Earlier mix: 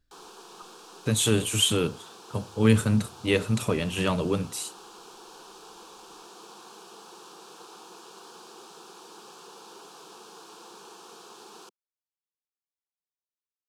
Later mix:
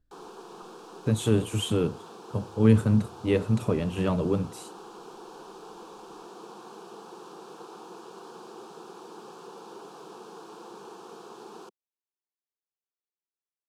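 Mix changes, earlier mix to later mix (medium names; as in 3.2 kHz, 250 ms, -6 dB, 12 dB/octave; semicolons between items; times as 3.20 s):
speech -5.5 dB; master: add tilt shelf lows +7 dB, about 1.4 kHz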